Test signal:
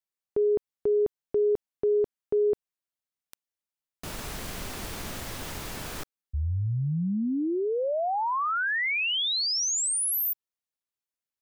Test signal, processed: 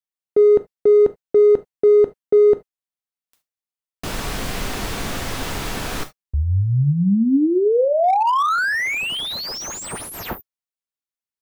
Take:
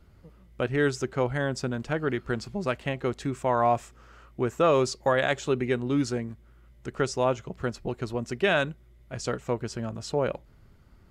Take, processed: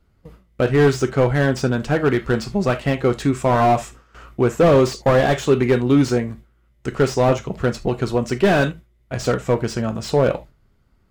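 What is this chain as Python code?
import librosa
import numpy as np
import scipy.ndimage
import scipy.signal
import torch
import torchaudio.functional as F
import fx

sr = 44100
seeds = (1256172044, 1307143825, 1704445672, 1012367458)

p1 = fx.gate_hold(x, sr, open_db=-42.0, close_db=-51.0, hold_ms=29.0, range_db=-15, attack_ms=1.5, release_ms=90.0)
p2 = np.clip(p1, -10.0 ** (-21.5 / 20.0), 10.0 ** (-21.5 / 20.0))
p3 = p1 + F.gain(torch.from_numpy(p2), -4.5).numpy()
p4 = fx.rev_gated(p3, sr, seeds[0], gate_ms=100, shape='falling', drr_db=9.0)
p5 = fx.slew_limit(p4, sr, full_power_hz=84.0)
y = F.gain(torch.from_numpy(p5), 6.5).numpy()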